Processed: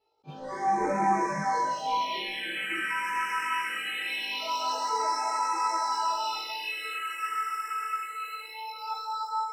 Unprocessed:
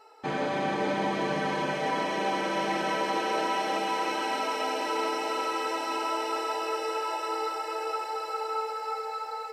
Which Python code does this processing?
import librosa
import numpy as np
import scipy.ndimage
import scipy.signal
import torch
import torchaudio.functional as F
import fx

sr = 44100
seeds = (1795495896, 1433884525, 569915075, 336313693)

y = fx.leveller(x, sr, passes=1)
y = fx.phaser_stages(y, sr, stages=4, low_hz=690.0, high_hz=3100.0, hz=0.23, feedback_pct=10)
y = fx.noise_reduce_blind(y, sr, reduce_db=19)
y = fx.room_flutter(y, sr, wall_m=3.3, rt60_s=0.34)
y = fx.attack_slew(y, sr, db_per_s=500.0)